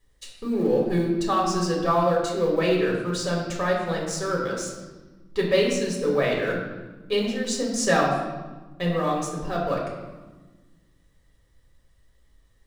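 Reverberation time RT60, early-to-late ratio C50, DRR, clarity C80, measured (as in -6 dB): 1.3 s, 3.0 dB, -3.0 dB, 5.0 dB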